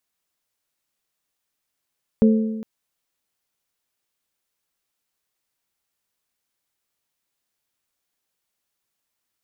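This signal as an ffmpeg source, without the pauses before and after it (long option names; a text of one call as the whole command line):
ffmpeg -f lavfi -i "aevalsrc='0.316*pow(10,-3*t/1.21)*sin(2*PI*220*t)+0.133*pow(10,-3*t/0.983)*sin(2*PI*440*t)+0.0562*pow(10,-3*t/0.931)*sin(2*PI*528*t)':duration=0.41:sample_rate=44100" out.wav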